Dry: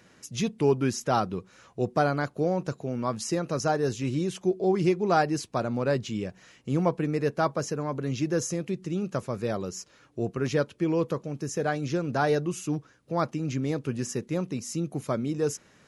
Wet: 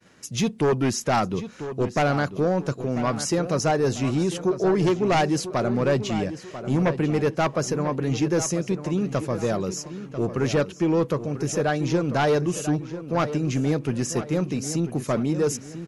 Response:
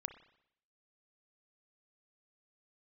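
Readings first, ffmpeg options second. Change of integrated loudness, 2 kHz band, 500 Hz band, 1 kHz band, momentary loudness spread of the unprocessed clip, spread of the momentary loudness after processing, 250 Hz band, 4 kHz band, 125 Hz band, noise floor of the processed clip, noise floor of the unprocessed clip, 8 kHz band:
+4.0 dB, +4.5 dB, +4.0 dB, +3.0 dB, 8 LU, 6 LU, +4.5 dB, +6.0 dB, +5.0 dB, −42 dBFS, −59 dBFS, +6.0 dB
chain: -filter_complex "[0:a]aeval=exprs='0.316*sin(PI/2*2.51*val(0)/0.316)':channel_layout=same,asplit=2[link_01][link_02];[link_02]adelay=993,lowpass=frequency=4100:poles=1,volume=-11.5dB,asplit=2[link_03][link_04];[link_04]adelay=993,lowpass=frequency=4100:poles=1,volume=0.4,asplit=2[link_05][link_06];[link_06]adelay=993,lowpass=frequency=4100:poles=1,volume=0.4,asplit=2[link_07][link_08];[link_08]adelay=993,lowpass=frequency=4100:poles=1,volume=0.4[link_09];[link_01][link_03][link_05][link_07][link_09]amix=inputs=5:normalize=0,agate=range=-33dB:threshold=-41dB:ratio=3:detection=peak,volume=-6dB"

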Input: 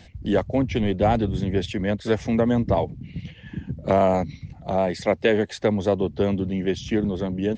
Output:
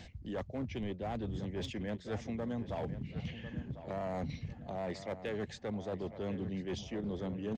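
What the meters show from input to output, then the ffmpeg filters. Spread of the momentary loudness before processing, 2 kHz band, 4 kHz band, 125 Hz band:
12 LU, −16.0 dB, −13.5 dB, −13.5 dB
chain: -filter_complex "[0:a]areverse,acompressor=threshold=-33dB:ratio=8,areverse,asoftclip=type=hard:threshold=-30dB,asplit=2[link_01][link_02];[link_02]adelay=1048,lowpass=frequency=3100:poles=1,volume=-12dB,asplit=2[link_03][link_04];[link_04]adelay=1048,lowpass=frequency=3100:poles=1,volume=0.39,asplit=2[link_05][link_06];[link_06]adelay=1048,lowpass=frequency=3100:poles=1,volume=0.39,asplit=2[link_07][link_08];[link_08]adelay=1048,lowpass=frequency=3100:poles=1,volume=0.39[link_09];[link_01][link_03][link_05][link_07][link_09]amix=inputs=5:normalize=0,volume=-2dB"

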